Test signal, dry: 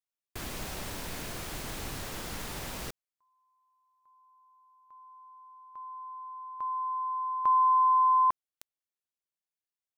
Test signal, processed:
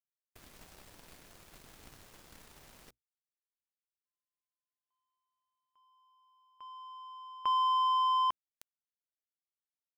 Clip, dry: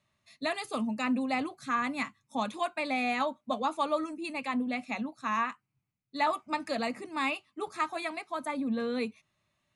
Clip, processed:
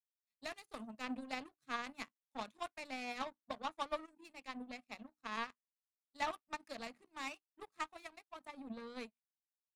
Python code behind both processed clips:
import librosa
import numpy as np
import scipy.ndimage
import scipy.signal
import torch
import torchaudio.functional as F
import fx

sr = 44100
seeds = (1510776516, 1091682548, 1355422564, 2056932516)

y = fx.hum_notches(x, sr, base_hz=60, count=5)
y = fx.power_curve(y, sr, exponent=2.0)
y = F.gain(torch.from_numpy(y), -4.0).numpy()